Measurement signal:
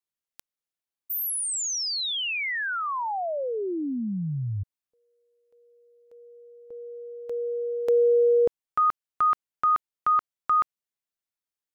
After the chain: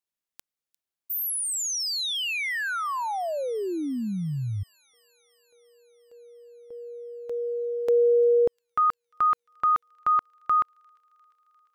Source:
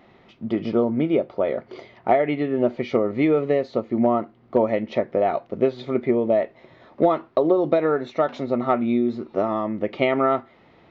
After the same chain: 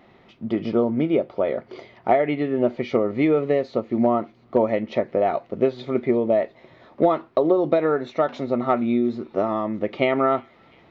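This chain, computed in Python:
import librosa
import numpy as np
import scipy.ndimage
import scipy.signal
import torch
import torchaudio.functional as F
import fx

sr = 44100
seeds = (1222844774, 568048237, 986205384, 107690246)

y = fx.echo_wet_highpass(x, sr, ms=350, feedback_pct=76, hz=3500.0, wet_db=-20.5)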